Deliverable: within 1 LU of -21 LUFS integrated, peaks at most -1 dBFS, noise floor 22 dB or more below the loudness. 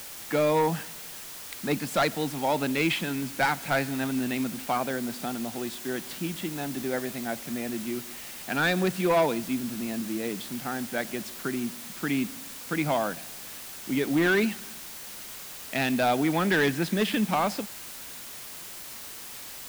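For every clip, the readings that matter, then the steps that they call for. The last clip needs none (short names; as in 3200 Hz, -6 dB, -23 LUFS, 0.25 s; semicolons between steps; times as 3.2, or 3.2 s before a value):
clipped 0.9%; flat tops at -18.0 dBFS; noise floor -41 dBFS; noise floor target -51 dBFS; loudness -29.0 LUFS; peak -18.0 dBFS; loudness target -21.0 LUFS
-> clip repair -18 dBFS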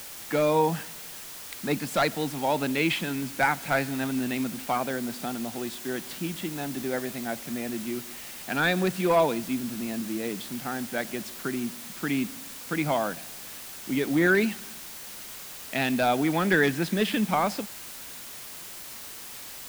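clipped 0.0%; noise floor -41 dBFS; noise floor target -51 dBFS
-> noise print and reduce 10 dB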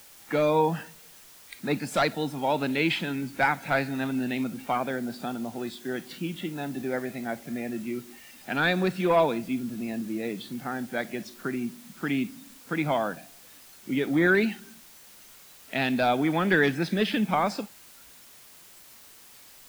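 noise floor -51 dBFS; loudness -28.0 LUFS; peak -9.5 dBFS; loudness target -21.0 LUFS
-> gain +7 dB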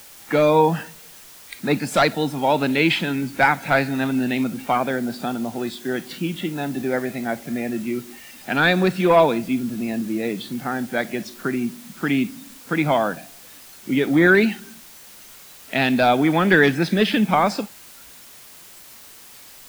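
loudness -21.0 LUFS; peak -2.5 dBFS; noise floor -44 dBFS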